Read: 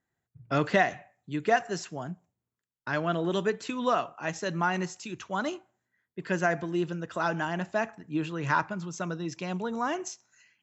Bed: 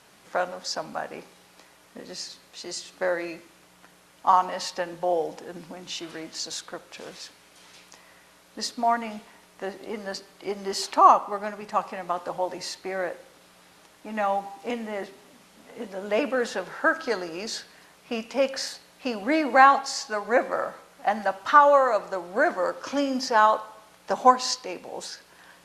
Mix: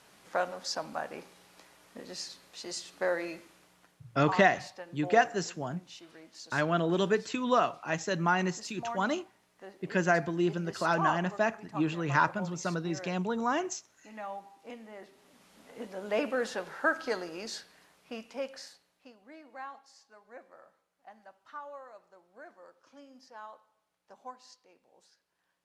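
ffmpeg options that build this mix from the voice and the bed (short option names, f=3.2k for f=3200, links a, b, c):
-filter_complex "[0:a]adelay=3650,volume=0.5dB[a];[1:a]volume=5.5dB,afade=t=out:st=3.44:d=0.57:silence=0.281838,afade=t=in:st=15.03:d=0.51:silence=0.334965,afade=t=out:st=17.14:d=2.02:silence=0.0749894[b];[a][b]amix=inputs=2:normalize=0"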